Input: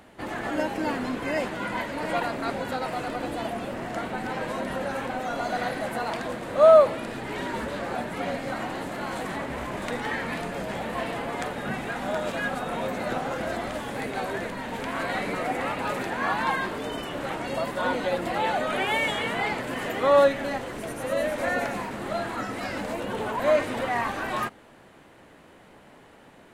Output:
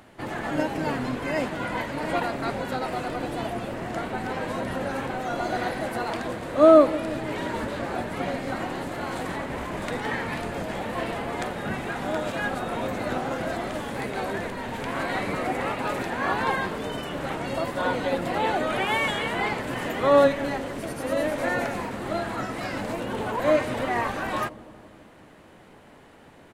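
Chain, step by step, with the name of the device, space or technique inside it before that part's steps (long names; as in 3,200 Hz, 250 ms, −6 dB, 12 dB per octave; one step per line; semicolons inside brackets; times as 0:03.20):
0:16.58–0:17.22: parametric band 160 Hz +2.5 dB 0.39 octaves
octave pedal (pitch-shifted copies added −12 semitones −7 dB)
delay with a low-pass on its return 167 ms, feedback 67%, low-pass 480 Hz, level −13 dB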